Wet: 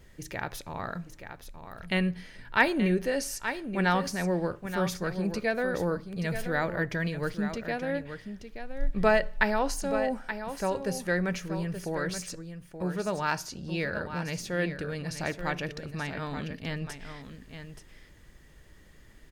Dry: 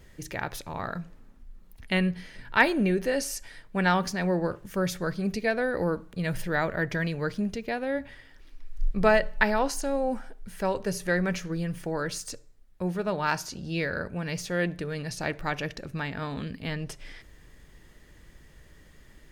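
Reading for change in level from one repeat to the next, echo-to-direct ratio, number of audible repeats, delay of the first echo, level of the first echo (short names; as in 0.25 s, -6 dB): no steady repeat, -9.5 dB, 1, 0.877 s, -9.5 dB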